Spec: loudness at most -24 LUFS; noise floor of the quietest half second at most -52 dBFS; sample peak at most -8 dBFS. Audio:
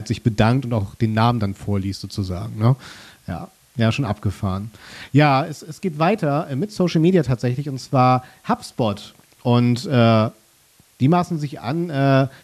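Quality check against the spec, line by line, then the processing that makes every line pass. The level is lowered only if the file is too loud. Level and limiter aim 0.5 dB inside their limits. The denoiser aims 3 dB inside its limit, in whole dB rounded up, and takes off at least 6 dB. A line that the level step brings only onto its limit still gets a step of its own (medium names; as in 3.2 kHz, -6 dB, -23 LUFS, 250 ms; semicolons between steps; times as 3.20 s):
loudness -20.0 LUFS: fail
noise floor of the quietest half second -55 dBFS: pass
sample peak -4.5 dBFS: fail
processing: trim -4.5 dB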